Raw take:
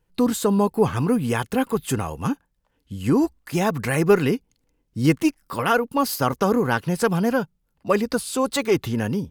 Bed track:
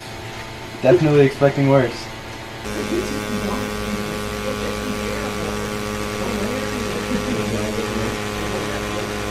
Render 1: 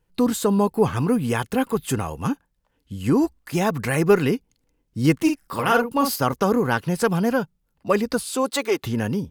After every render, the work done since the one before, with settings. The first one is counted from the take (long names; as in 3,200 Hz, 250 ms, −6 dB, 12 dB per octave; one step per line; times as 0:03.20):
0:05.22–0:06.16: double-tracking delay 47 ms −6 dB
0:08.23–0:08.82: high-pass filter 140 Hz → 440 Hz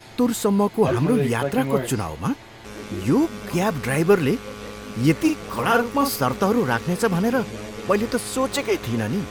mix in bed track −11 dB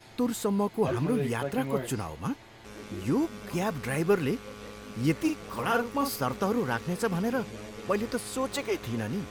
level −8 dB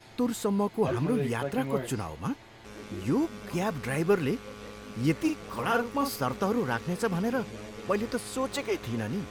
high-shelf EQ 9,900 Hz −4 dB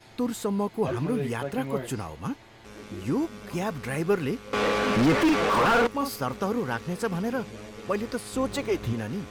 0:04.53–0:05.87: mid-hump overdrive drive 37 dB, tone 1,400 Hz, clips at −12.5 dBFS
0:08.33–0:08.93: low-shelf EQ 320 Hz +9 dB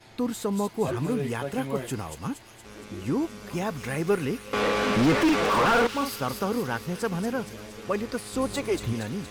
delay with a high-pass on its return 234 ms, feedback 58%, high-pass 3,400 Hz, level −3.5 dB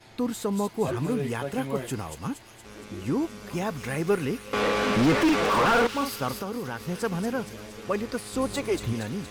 0:06.37–0:06.81: downward compressor 2.5 to 1, threshold −30 dBFS